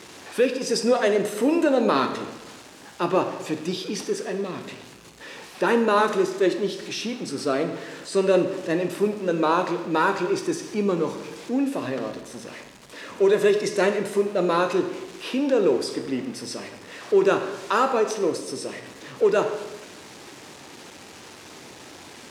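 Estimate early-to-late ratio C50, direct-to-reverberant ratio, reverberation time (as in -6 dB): 9.0 dB, 6.5 dB, 1.1 s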